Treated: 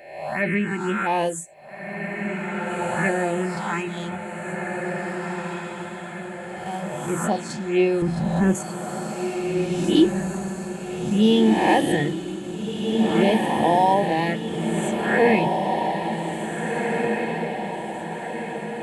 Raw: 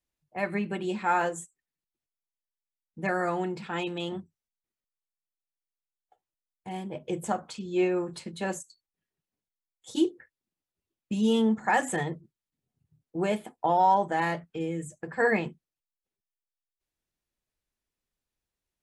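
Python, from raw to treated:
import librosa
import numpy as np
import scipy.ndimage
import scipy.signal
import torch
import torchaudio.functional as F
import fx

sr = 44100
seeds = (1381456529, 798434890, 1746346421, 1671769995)

p1 = fx.spec_swells(x, sr, rise_s=0.96)
p2 = fx.env_phaser(p1, sr, low_hz=180.0, high_hz=1400.0, full_db=-21.0)
p3 = fx.tilt_eq(p2, sr, slope=-4.5, at=(8.02, 8.55))
p4 = p3 + fx.echo_diffused(p3, sr, ms=1797, feedback_pct=52, wet_db=-3.5, dry=0)
y = F.gain(torch.from_numpy(p4), 7.0).numpy()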